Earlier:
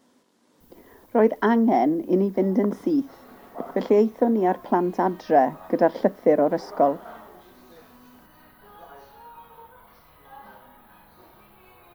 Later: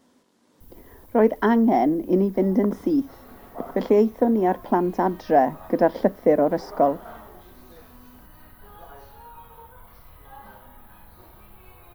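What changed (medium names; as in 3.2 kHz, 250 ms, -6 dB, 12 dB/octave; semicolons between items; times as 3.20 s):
first sound +5.0 dB; master: add bass shelf 85 Hz +10.5 dB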